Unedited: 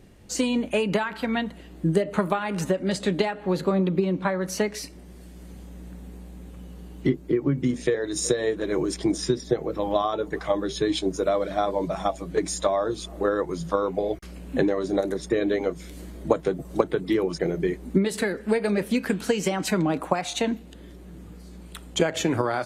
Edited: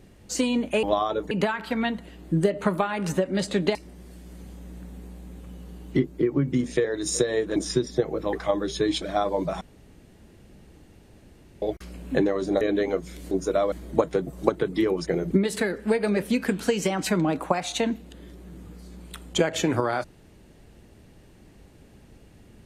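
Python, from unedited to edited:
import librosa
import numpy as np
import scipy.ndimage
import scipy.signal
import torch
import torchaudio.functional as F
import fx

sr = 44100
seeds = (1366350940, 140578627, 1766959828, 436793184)

y = fx.edit(x, sr, fx.cut(start_s=3.27, length_s=1.58),
    fx.cut(start_s=8.66, length_s=0.43),
    fx.move(start_s=9.86, length_s=0.48, to_s=0.83),
    fx.move(start_s=11.03, length_s=0.41, to_s=16.04),
    fx.room_tone_fill(start_s=12.03, length_s=2.01),
    fx.cut(start_s=15.03, length_s=0.31),
    fx.cut(start_s=17.63, length_s=0.29), tone=tone)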